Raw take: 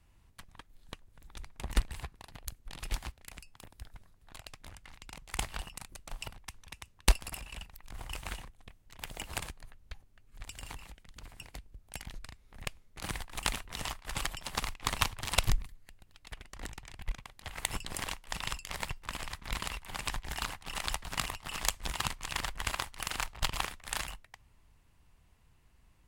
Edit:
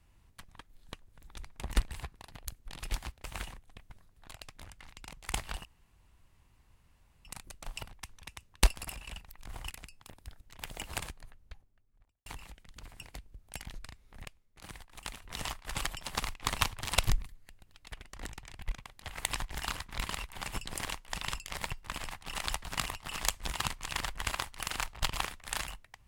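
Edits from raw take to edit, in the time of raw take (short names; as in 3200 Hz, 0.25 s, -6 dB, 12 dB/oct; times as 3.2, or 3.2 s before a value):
3.24–3.95 swap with 8.15–8.81
5.7 insert room tone 1.60 s
9.49–10.66 studio fade out
12.65–13.62 gain -10 dB
17.73–19.3 swap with 20.07–20.51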